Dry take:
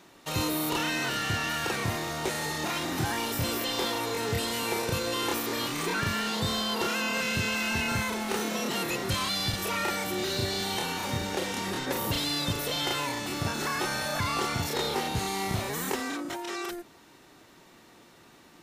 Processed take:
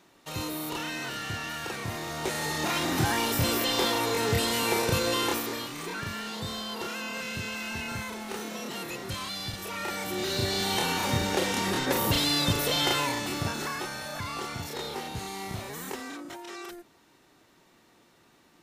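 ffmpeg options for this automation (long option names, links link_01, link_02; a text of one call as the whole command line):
ffmpeg -i in.wav -af "volume=13.5dB,afade=type=in:start_time=1.84:duration=1.04:silence=0.375837,afade=type=out:start_time=5.11:duration=0.56:silence=0.334965,afade=type=in:start_time=9.72:duration=1.19:silence=0.316228,afade=type=out:start_time=12.87:duration=1.04:silence=0.316228" out.wav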